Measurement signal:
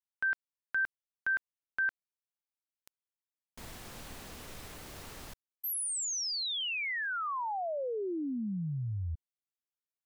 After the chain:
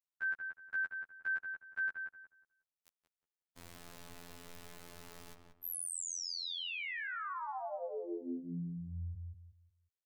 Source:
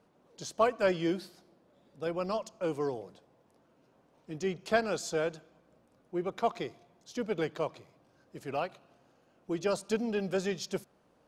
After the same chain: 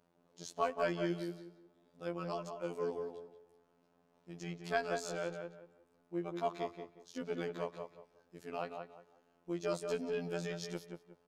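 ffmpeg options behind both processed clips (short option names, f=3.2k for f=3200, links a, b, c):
-filter_complex "[0:a]afftfilt=real='hypot(re,im)*cos(PI*b)':imag='0':win_size=2048:overlap=0.75,asplit=2[a][b];[b]adelay=181,lowpass=f=1.9k:p=1,volume=-5dB,asplit=2[c][d];[d]adelay=181,lowpass=f=1.9k:p=1,volume=0.29,asplit=2[e][f];[f]adelay=181,lowpass=f=1.9k:p=1,volume=0.29,asplit=2[g][h];[h]adelay=181,lowpass=f=1.9k:p=1,volume=0.29[i];[a][c][e][g][i]amix=inputs=5:normalize=0,volume=-3.5dB"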